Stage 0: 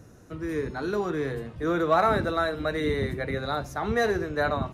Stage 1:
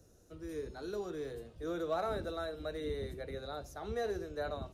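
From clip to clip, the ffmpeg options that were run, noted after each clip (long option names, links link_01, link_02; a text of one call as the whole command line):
ffmpeg -i in.wav -filter_complex "[0:a]acrossover=split=180|3000[link_01][link_02][link_03];[link_03]alimiter=level_in=15.5dB:limit=-24dB:level=0:latency=1:release=149,volume=-15.5dB[link_04];[link_01][link_02][link_04]amix=inputs=3:normalize=0,equalizer=frequency=125:width_type=o:width=1:gain=-11,equalizer=frequency=250:width_type=o:width=1:gain=-8,equalizer=frequency=1000:width_type=o:width=1:gain=-10,equalizer=frequency=2000:width_type=o:width=1:gain=-11,volume=-5.5dB" out.wav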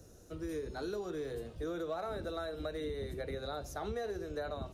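ffmpeg -i in.wav -af "acompressor=threshold=-42dB:ratio=6,volume=6.5dB" out.wav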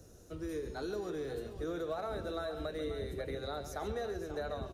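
ffmpeg -i in.wav -af "aecho=1:1:138|535:0.237|0.266" out.wav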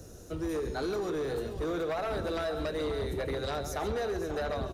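ffmpeg -i in.wav -af "aeval=exprs='0.0531*sin(PI/2*2.24*val(0)/0.0531)':channel_layout=same,volume=-2.5dB" out.wav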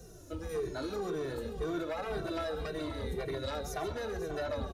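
ffmpeg -i in.wav -filter_complex "[0:a]asplit=2[link_01][link_02];[link_02]adelay=2.1,afreqshift=-1.9[link_03];[link_01][link_03]amix=inputs=2:normalize=1" out.wav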